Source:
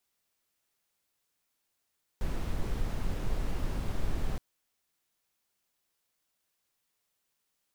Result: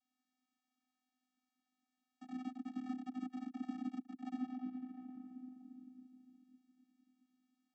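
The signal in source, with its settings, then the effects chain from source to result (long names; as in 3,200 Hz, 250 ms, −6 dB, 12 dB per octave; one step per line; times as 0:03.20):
noise brown, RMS −29.5 dBFS 2.17 s
rectangular room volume 150 cubic metres, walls hard, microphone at 0.5 metres
soft clipping −27 dBFS
channel vocoder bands 16, square 254 Hz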